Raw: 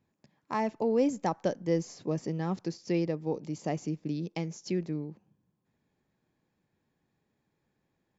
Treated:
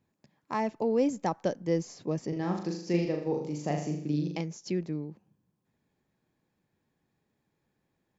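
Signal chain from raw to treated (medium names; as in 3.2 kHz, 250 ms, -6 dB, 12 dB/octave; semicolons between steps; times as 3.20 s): 2.28–4.41 s: flutter echo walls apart 6.9 m, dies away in 0.59 s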